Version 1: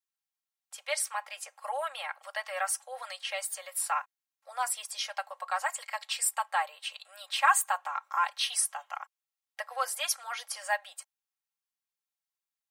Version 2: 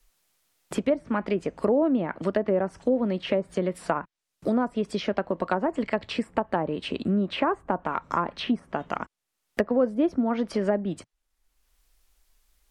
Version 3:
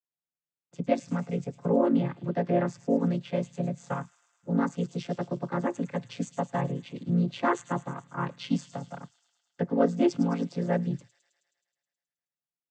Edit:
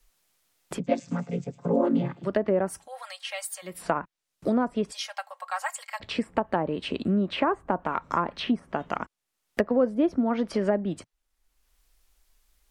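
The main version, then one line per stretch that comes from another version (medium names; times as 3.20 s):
2
0.78–2.26 s: from 3, crossfade 0.10 s
2.76–3.74 s: from 1, crossfade 0.24 s
4.92–6.00 s: from 1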